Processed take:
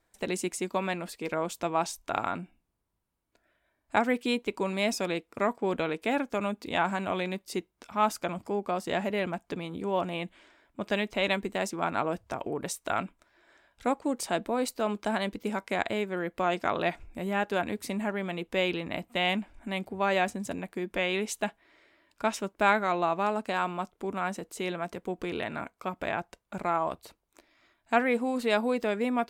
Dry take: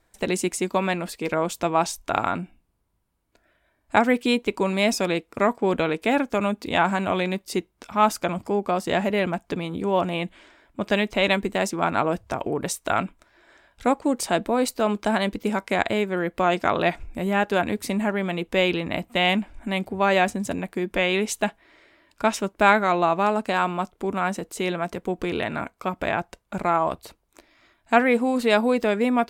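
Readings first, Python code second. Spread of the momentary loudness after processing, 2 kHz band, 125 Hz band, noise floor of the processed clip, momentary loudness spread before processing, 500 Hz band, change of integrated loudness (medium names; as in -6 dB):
8 LU, -6.5 dB, -8.0 dB, -77 dBFS, 8 LU, -6.5 dB, -7.0 dB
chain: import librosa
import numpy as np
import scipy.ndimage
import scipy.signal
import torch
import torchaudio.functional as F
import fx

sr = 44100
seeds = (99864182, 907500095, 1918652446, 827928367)

y = fx.low_shelf(x, sr, hz=120.0, db=-4.5)
y = y * 10.0 ** (-6.5 / 20.0)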